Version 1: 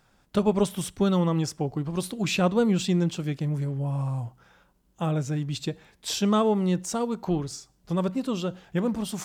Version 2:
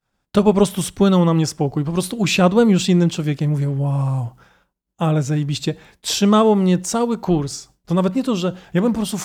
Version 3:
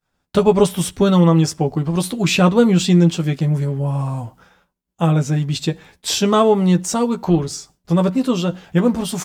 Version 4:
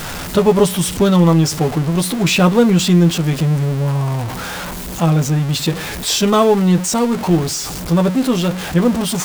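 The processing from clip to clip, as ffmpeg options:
ffmpeg -i in.wav -af "agate=range=-33dB:threshold=-51dB:ratio=3:detection=peak,volume=8.5dB" out.wav
ffmpeg -i in.wav -filter_complex "[0:a]asplit=2[link_01][link_02];[link_02]adelay=12,volume=-6dB[link_03];[link_01][link_03]amix=inputs=2:normalize=0" out.wav
ffmpeg -i in.wav -af "aeval=exprs='val(0)+0.5*0.1*sgn(val(0))':channel_layout=same" out.wav

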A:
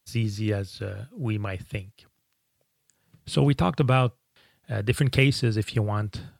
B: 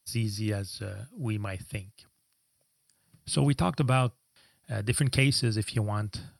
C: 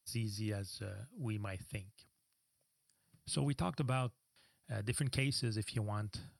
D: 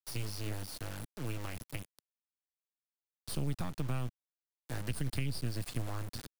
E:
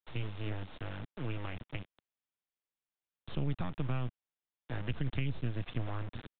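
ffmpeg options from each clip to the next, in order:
ffmpeg -i in.wav -af "superequalizer=7b=0.562:14b=2.24:15b=0.562:16b=3.98,volume=-3.5dB" out.wav
ffmpeg -i in.wav -af "acompressor=threshold=-29dB:ratio=1.5,volume=-7.5dB" out.wav
ffmpeg -i in.wav -filter_complex "[0:a]acrusher=bits=5:dc=4:mix=0:aa=0.000001,acrossover=split=180[link_01][link_02];[link_02]acompressor=threshold=-46dB:ratio=6[link_03];[link_01][link_03]amix=inputs=2:normalize=0,volume=6.5dB" out.wav
ffmpeg -i in.wav -af "aresample=8000,aresample=44100,volume=1dB" out.wav

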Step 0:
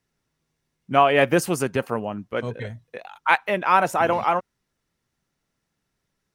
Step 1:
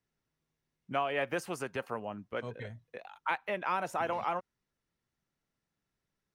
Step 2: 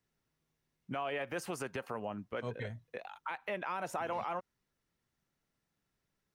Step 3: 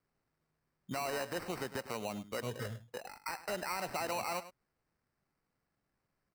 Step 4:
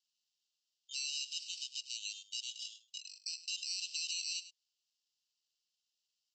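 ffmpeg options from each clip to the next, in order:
ffmpeg -i in.wav -filter_complex "[0:a]highshelf=frequency=7100:gain=-6.5,acrossover=split=520|2800[link_01][link_02][link_03];[link_01]acompressor=threshold=-32dB:ratio=4[link_04];[link_02]acompressor=threshold=-22dB:ratio=4[link_05];[link_03]acompressor=threshold=-37dB:ratio=4[link_06];[link_04][link_05][link_06]amix=inputs=3:normalize=0,volume=-8.5dB" out.wav
ffmpeg -i in.wav -af "alimiter=level_in=5.5dB:limit=-24dB:level=0:latency=1:release=96,volume=-5.5dB,volume=2dB" out.wav
ffmpeg -i in.wav -af "acrusher=samples=13:mix=1:aa=0.000001,aecho=1:1:102:0.188" out.wav
ffmpeg -i in.wav -af "asuperpass=centerf=4700:order=20:qfactor=0.96,volume=9.5dB" out.wav

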